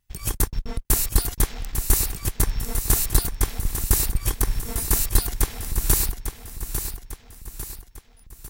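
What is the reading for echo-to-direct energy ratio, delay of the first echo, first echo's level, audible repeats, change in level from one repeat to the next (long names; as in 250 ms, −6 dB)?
−7.5 dB, 849 ms, −8.5 dB, 4, −6.5 dB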